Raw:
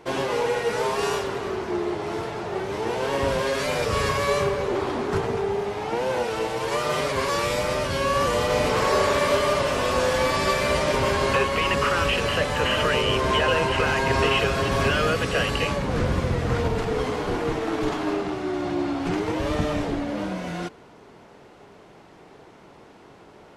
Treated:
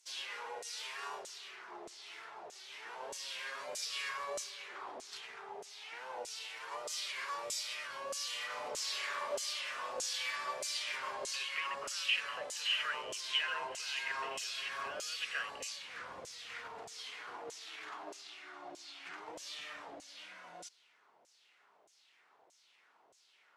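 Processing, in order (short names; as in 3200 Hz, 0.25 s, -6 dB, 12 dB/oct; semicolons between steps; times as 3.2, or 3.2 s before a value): pre-emphasis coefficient 0.9; LFO band-pass saw down 1.6 Hz 550–7300 Hz; gain +4 dB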